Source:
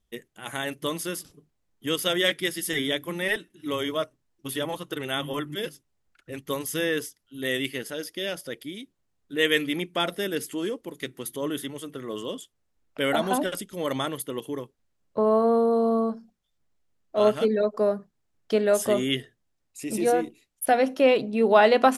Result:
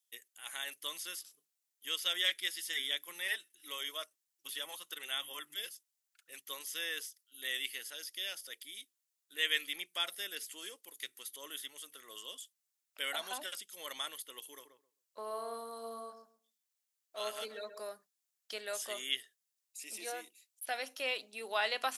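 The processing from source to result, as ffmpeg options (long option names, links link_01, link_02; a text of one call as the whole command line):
ffmpeg -i in.wav -filter_complex "[0:a]asettb=1/sr,asplit=3[link_01][link_02][link_03];[link_01]atrim=end=14.524[link_04];[link_02]atrim=start=14.52:end=17.89,asetpts=PTS-STARTPTS,afade=type=in:duration=0.004:curve=qsin,afade=type=out:start_time=3.366:duration=0.004:curve=qsin,asplit=2[link_05][link_06];[link_06]adelay=131,lowpass=frequency=1100:poles=1,volume=-7dB,asplit=2[link_07][link_08];[link_08]adelay=131,lowpass=frequency=1100:poles=1,volume=0.19,asplit=2[link_09][link_10];[link_10]adelay=131,lowpass=frequency=1100:poles=1,volume=0.19[link_11];[link_05][link_07][link_09][link_11]amix=inputs=4:normalize=0,atrim=end_sample=148617[link_12];[link_03]atrim=start=17.886[link_13];[link_04][link_12]acrossfade=duration=0.004:curve1=hsin:curve2=qsin[link_14];[link_14][link_13]acrossfade=duration=0.004:curve1=qsin:curve2=hsin,acrossover=split=5200[link_15][link_16];[link_16]acompressor=threshold=-50dB:ratio=4:attack=1:release=60[link_17];[link_15][link_17]amix=inputs=2:normalize=0,highpass=frequency=410:poles=1,aderivative,volume=2.5dB" out.wav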